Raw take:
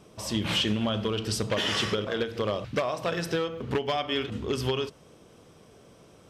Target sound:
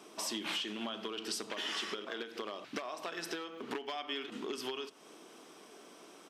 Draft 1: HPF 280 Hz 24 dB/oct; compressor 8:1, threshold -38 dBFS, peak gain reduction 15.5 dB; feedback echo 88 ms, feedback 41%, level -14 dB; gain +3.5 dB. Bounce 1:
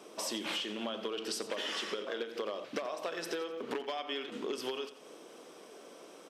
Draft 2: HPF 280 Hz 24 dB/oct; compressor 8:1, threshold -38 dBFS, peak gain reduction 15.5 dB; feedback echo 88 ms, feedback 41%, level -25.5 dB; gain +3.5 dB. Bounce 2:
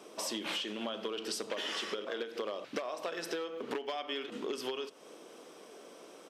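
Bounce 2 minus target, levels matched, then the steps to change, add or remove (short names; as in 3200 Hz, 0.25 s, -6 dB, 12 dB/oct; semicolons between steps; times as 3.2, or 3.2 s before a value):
500 Hz band +3.5 dB
add after compressor: bell 520 Hz -10 dB 0.46 oct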